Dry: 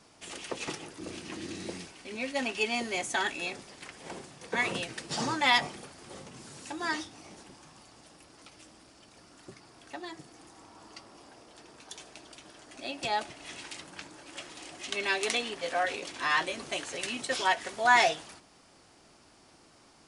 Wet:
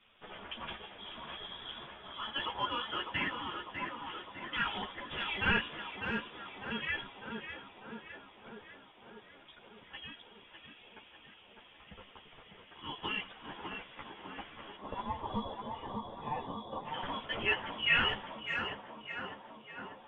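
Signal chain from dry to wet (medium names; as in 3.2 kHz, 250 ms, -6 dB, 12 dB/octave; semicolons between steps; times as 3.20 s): time-frequency box 14.76–16.85 s, 270–2400 Hz -23 dB; frequency inversion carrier 3.6 kHz; in parallel at -8 dB: saturation -29.5 dBFS, distortion -6 dB; on the sum: distance through air 350 m; on a send: tape echo 601 ms, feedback 81%, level -3.5 dB, low-pass 1.7 kHz; on the sum: three-phase chorus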